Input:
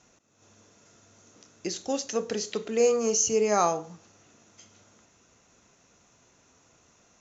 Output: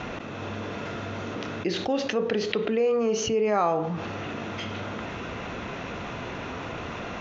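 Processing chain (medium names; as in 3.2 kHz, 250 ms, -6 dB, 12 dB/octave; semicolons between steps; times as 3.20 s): low-pass 3.3 kHz 24 dB/octave; level flattener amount 70%; trim -2.5 dB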